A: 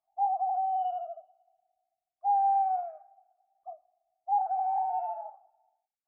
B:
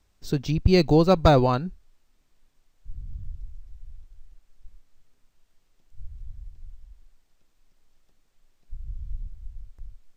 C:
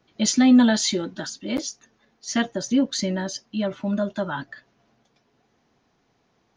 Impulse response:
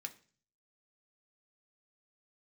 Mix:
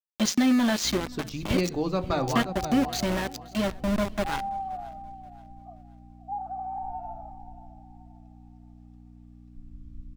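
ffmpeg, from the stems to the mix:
-filter_complex "[0:a]adelay=2000,volume=-5.5dB,asplit=2[link_01][link_02];[link_02]volume=-12.5dB[link_03];[1:a]aeval=exprs='val(0)+0.0112*(sin(2*PI*60*n/s)+sin(2*PI*2*60*n/s)/2+sin(2*PI*3*60*n/s)/3+sin(2*PI*4*60*n/s)/4+sin(2*PI*5*60*n/s)/5)':channel_layout=same,adelay=850,volume=-0.5dB,asplit=3[link_04][link_05][link_06];[link_05]volume=-6.5dB[link_07];[link_06]volume=-18.5dB[link_08];[2:a]acompressor=threshold=-18dB:ratio=6,aeval=exprs='val(0)*gte(abs(val(0)),0.0562)':channel_layout=same,volume=-1dB,asplit=4[link_09][link_10][link_11][link_12];[link_10]volume=-17dB[link_13];[link_11]volume=-23dB[link_14];[link_12]apad=whole_len=485822[link_15];[link_04][link_15]sidechaingate=range=-11dB:threshold=-30dB:ratio=16:detection=peak[link_16];[link_01][link_16]amix=inputs=2:normalize=0,equalizer=frequency=1200:width_type=o:width=0.23:gain=13.5,acompressor=threshold=-29dB:ratio=6,volume=0dB[link_17];[3:a]atrim=start_sample=2205[link_18];[link_07][link_13]amix=inputs=2:normalize=0[link_19];[link_19][link_18]afir=irnorm=-1:irlink=0[link_20];[link_03][link_08][link_14]amix=inputs=3:normalize=0,aecho=0:1:529|1058|1587|2116|2645:1|0.35|0.122|0.0429|0.015[link_21];[link_09][link_17][link_20][link_21]amix=inputs=4:normalize=0,highshelf=frequency=6700:gain=-5.5"

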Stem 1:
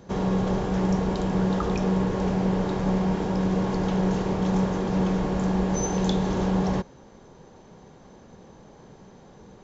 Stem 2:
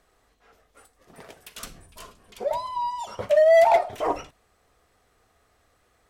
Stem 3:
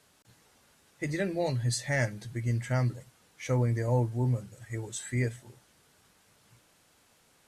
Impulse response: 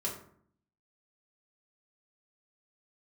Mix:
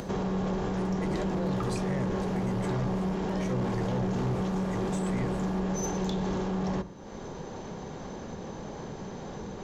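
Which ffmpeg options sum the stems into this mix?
-filter_complex "[0:a]volume=2.5dB,asplit=2[link_01][link_02];[link_02]volume=-20.5dB[link_03];[1:a]acompressor=threshold=-19dB:ratio=6,asoftclip=type=tanh:threshold=-31.5dB,volume=1.5dB[link_04];[2:a]agate=range=-19dB:threshold=-56dB:ratio=16:detection=peak,acrossover=split=480[link_05][link_06];[link_06]acompressor=threshold=-41dB:ratio=4[link_07];[link_05][link_07]amix=inputs=2:normalize=0,volume=-0.5dB,asplit=2[link_08][link_09];[link_09]apad=whole_len=268711[link_10];[link_04][link_10]sidechaincompress=threshold=-43dB:ratio=8:attack=16:release=439[link_11];[link_01][link_11]amix=inputs=2:normalize=0,acompressor=mode=upward:threshold=-30dB:ratio=2.5,alimiter=limit=-21dB:level=0:latency=1:release=292,volume=0dB[link_12];[3:a]atrim=start_sample=2205[link_13];[link_03][link_13]afir=irnorm=-1:irlink=0[link_14];[link_08][link_12][link_14]amix=inputs=3:normalize=0,bandreject=frequency=60:width_type=h:width=6,bandreject=frequency=120:width_type=h:width=6,asoftclip=type=tanh:threshold=-23.5dB"

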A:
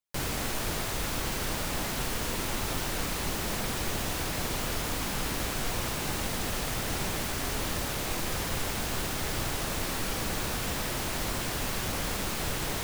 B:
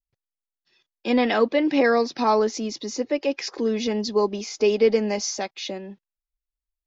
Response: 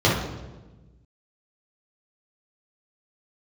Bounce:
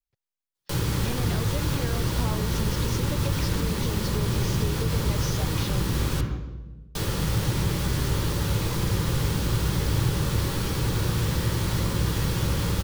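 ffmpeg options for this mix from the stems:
-filter_complex "[0:a]equalizer=frequency=690:width=4.2:gain=-12,adelay=550,volume=1.5dB,asplit=3[link_01][link_02][link_03];[link_01]atrim=end=6.21,asetpts=PTS-STARTPTS,afade=type=out:start_time=6.206:duration=0.004:curve=hsin[link_04];[link_02]atrim=start=6.21:end=6.95,asetpts=PTS-STARTPTS,volume=0[link_05];[link_03]atrim=start=6.95,asetpts=PTS-STARTPTS,afade=type=in:duration=0.004:curve=hsin[link_06];[link_04][link_05][link_06]concat=n=3:v=0:a=1,asplit=2[link_07][link_08];[link_08]volume=-19dB[link_09];[1:a]acompressor=threshold=-28dB:ratio=6,volume=-1.5dB[link_10];[2:a]atrim=start_sample=2205[link_11];[link_09][link_11]afir=irnorm=-1:irlink=0[link_12];[link_07][link_10][link_12]amix=inputs=3:normalize=0,acrossover=split=180[link_13][link_14];[link_14]acompressor=threshold=-28dB:ratio=6[link_15];[link_13][link_15]amix=inputs=2:normalize=0"

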